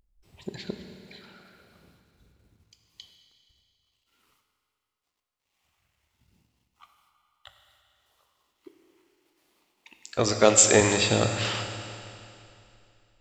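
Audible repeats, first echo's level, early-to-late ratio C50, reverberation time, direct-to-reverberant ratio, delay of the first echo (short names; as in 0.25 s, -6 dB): none, none, 6.0 dB, 2.7 s, 5.0 dB, none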